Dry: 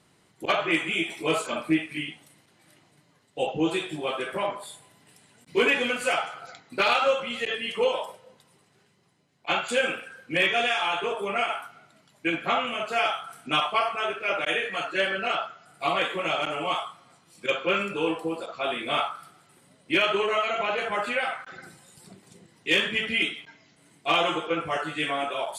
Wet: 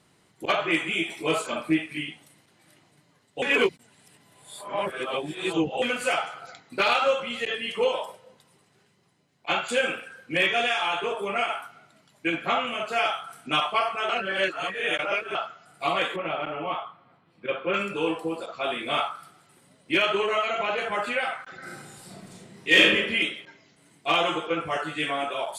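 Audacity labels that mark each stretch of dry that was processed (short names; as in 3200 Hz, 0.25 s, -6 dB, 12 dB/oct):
3.420000	5.820000	reverse
14.090000	15.350000	reverse
16.160000	17.740000	air absorption 430 m
21.580000	22.810000	reverb throw, RT60 1 s, DRR -6 dB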